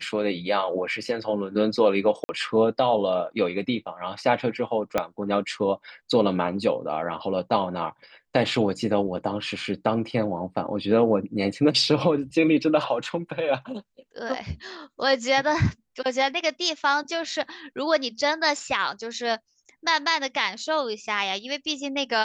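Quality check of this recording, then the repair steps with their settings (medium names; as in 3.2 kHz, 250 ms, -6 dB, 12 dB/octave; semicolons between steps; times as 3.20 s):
2.24–2.29 s: dropout 50 ms
4.98 s: pop -9 dBFS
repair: de-click; interpolate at 2.24 s, 50 ms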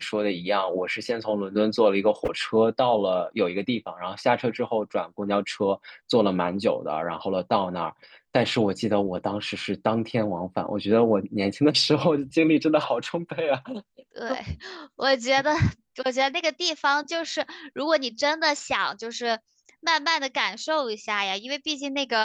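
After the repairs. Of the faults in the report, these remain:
4.98 s: pop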